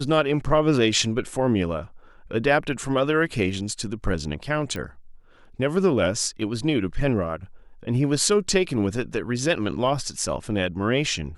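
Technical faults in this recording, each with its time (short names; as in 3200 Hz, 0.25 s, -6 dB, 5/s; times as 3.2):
4.76 pop -18 dBFS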